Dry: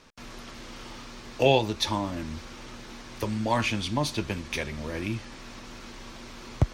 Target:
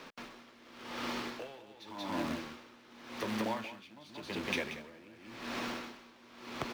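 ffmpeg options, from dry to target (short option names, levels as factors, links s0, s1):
-filter_complex "[0:a]asoftclip=type=tanh:threshold=0.0596,acompressor=threshold=0.0141:ratio=12,acrusher=bits=2:mode=log:mix=0:aa=0.000001,acrossover=split=180 4400:gain=0.126 1 0.251[s0][s1][s2];[s0][s1][s2]amix=inputs=3:normalize=0,asplit=2[s3][s4];[s4]aecho=0:1:183:0.668[s5];[s3][s5]amix=inputs=2:normalize=0,aeval=exprs='val(0)*pow(10,-22*(0.5-0.5*cos(2*PI*0.89*n/s))/20)':c=same,volume=2.24"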